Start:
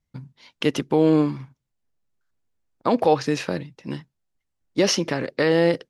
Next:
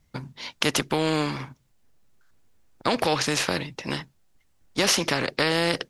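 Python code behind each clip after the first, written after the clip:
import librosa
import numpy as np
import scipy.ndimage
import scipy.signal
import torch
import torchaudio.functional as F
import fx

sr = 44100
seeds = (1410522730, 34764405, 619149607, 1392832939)

y = fx.spectral_comp(x, sr, ratio=2.0)
y = y * 10.0 ** (1.5 / 20.0)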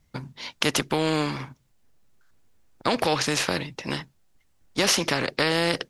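y = x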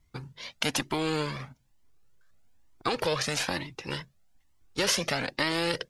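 y = fx.comb_cascade(x, sr, direction='rising', hz=1.1)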